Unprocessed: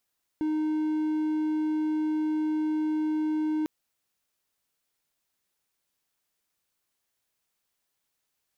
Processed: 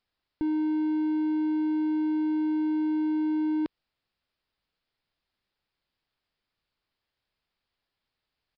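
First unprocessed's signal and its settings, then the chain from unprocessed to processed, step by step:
tone triangle 309 Hz -22.5 dBFS 3.25 s
low shelf 92 Hz +11.5 dB; downsampling 11025 Hz

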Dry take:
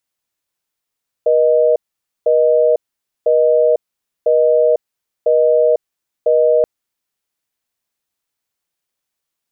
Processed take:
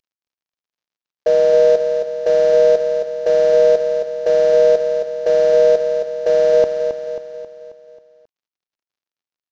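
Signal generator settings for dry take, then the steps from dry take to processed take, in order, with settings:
call progress tone busy tone, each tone -12 dBFS 5.38 s
CVSD 32 kbps; on a send: feedback echo 0.269 s, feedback 51%, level -7.5 dB

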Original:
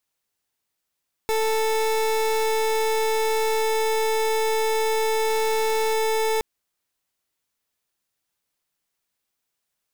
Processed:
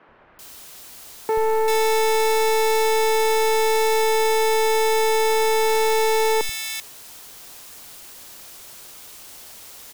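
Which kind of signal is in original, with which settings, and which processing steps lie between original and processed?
pulse 441 Hz, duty 29% -22 dBFS 5.12 s
in parallel at -5.5 dB: requantised 6-bit, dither triangular; on the sum: three bands offset in time mids, lows, highs 80/390 ms, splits 170/1900 Hz

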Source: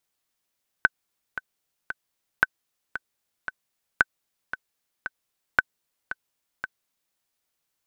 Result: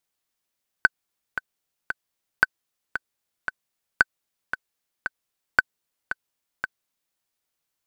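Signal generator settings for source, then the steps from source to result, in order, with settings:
metronome 114 bpm, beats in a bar 3, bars 4, 1520 Hz, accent 13 dB -3.5 dBFS
sample leveller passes 1

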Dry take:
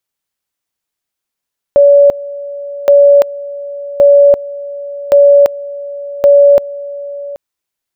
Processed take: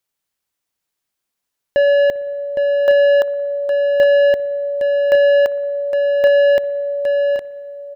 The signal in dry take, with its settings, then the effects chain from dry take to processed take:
two-level tone 569 Hz -2 dBFS, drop 18.5 dB, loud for 0.34 s, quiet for 0.78 s, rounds 5
soft clip -10.5 dBFS; on a send: echo 0.812 s -7.5 dB; on the sum: spring tank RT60 1.7 s, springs 57 ms, chirp 45 ms, DRR 17.5 dB

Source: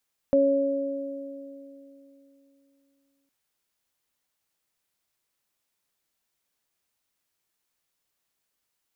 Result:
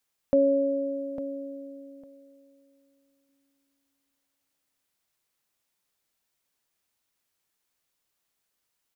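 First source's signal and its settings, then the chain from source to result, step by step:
additive tone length 2.96 s, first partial 277 Hz, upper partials 5.5 dB, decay 3.44 s, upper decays 2.68 s, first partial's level -22 dB
feedback echo 0.853 s, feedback 16%, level -11 dB

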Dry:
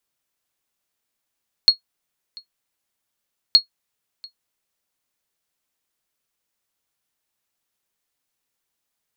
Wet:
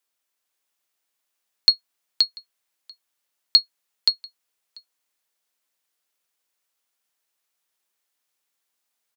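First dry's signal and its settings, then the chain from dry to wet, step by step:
sonar ping 4310 Hz, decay 0.11 s, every 1.87 s, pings 2, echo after 0.69 s, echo -26 dB -2.5 dBFS
HPF 470 Hz 6 dB/oct; on a send: echo 0.525 s -4 dB

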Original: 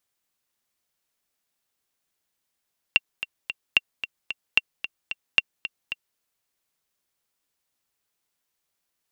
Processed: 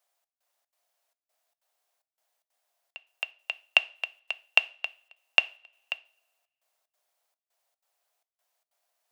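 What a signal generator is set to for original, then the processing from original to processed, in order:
metronome 223 bpm, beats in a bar 3, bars 4, 2750 Hz, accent 12.5 dB -3 dBFS
step gate "xxx..xxx.xx" 186 bpm -24 dB; resonant high-pass 660 Hz, resonance Q 4.5; two-slope reverb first 0.37 s, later 1.7 s, from -26 dB, DRR 14.5 dB

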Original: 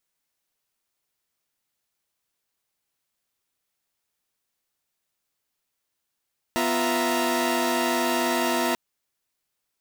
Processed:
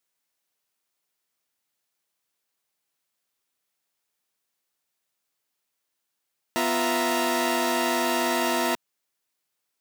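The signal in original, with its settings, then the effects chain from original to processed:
chord B3/F4/E5/A#5 saw, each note -25 dBFS 2.19 s
HPF 180 Hz 6 dB/oct

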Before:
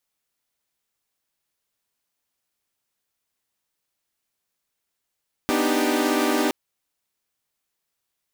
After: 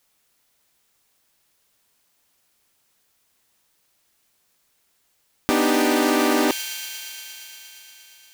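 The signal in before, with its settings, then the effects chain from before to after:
chord B3/D4/D#4/G4 saw, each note -22.5 dBFS 1.02 s
thin delay 0.117 s, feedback 84%, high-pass 3000 Hz, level -14 dB; in parallel at +1 dB: negative-ratio compressor -28 dBFS, ratio -0.5

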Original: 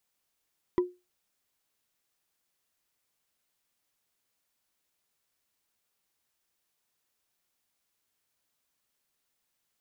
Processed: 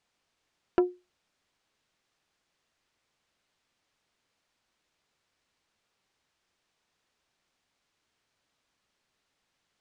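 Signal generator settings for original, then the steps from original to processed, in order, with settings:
wood hit, lowest mode 359 Hz, decay 0.25 s, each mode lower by 9.5 dB, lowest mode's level -18 dB
in parallel at +2.5 dB: limiter -24.5 dBFS; on the sum: air absorption 99 m; Doppler distortion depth 0.37 ms

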